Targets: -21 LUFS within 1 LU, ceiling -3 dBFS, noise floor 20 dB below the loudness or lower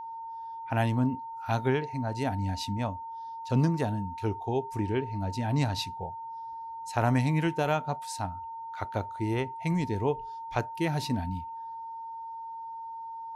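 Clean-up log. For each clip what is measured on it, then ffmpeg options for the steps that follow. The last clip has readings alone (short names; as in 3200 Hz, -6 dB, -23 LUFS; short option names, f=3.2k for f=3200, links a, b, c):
steady tone 910 Hz; tone level -37 dBFS; loudness -31.5 LUFS; peak -13.0 dBFS; loudness target -21.0 LUFS
-> -af "bandreject=f=910:w=30"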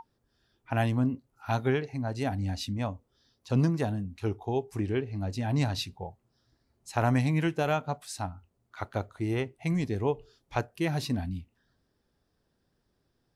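steady tone none; loudness -31.0 LUFS; peak -13.5 dBFS; loudness target -21.0 LUFS
-> -af "volume=10dB"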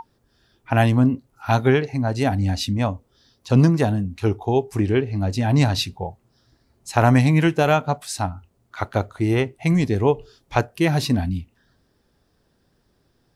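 loudness -21.0 LUFS; peak -3.5 dBFS; noise floor -66 dBFS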